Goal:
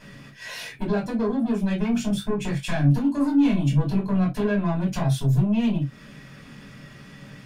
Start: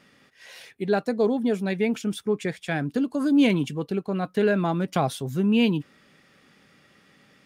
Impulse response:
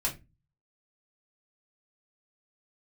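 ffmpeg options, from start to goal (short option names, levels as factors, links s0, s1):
-filter_complex "[0:a]bass=f=250:g=7,treble=f=4000:g=0,acompressor=threshold=0.0355:ratio=8,asoftclip=type=tanh:threshold=0.0316,asettb=1/sr,asplit=3[s0][s1][s2];[s0]atrim=end=1.884[s3];[s1]atrim=start=1.88:end=4.23,asetpts=PTS-STARTPTS,afade=t=in:d=0.004:c=qsin,afade=t=out:st=2.346:d=0.004:c=qsin,asplit=2[s4][s5];[s5]adelay=21,volume=0.501[s6];[s4][s6]amix=inputs=2:normalize=0,atrim=end_sample=103635[s7];[s2]atrim=start=4.226[s8];[s3][s7]acrossfade=d=0.004:c1=hsin:c2=qsin[s9];[s9][s8]acrossfade=d=0.004:c1=qsin:c2=hsin[s10];[1:a]atrim=start_sample=2205,atrim=end_sample=3969[s11];[s10][s11]afir=irnorm=-1:irlink=0,volume=1.78"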